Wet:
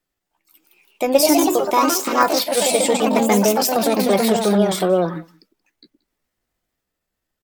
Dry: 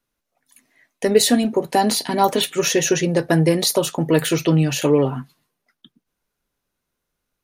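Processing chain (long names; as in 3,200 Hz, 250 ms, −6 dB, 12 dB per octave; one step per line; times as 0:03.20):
delay with pitch and tempo change per echo 224 ms, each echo +2 semitones, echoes 3
pitch shifter +4 semitones
single-tap delay 179 ms −24 dB
level −1 dB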